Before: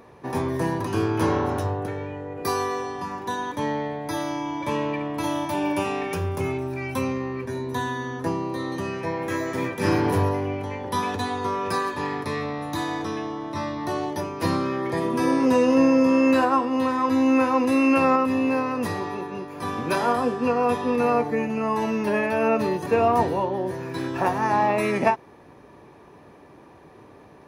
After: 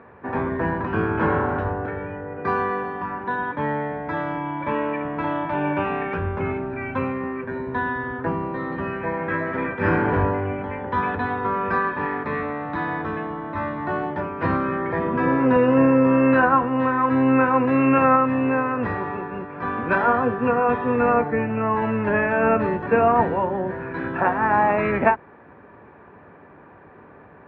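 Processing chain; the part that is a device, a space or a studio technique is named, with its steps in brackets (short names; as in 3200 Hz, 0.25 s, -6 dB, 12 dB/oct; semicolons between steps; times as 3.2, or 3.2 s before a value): sub-octave bass pedal (octaver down 1 oct, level -3 dB; speaker cabinet 77–2400 Hz, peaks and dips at 130 Hz -8 dB, 330 Hz -4 dB, 1500 Hz +9 dB); gain +2 dB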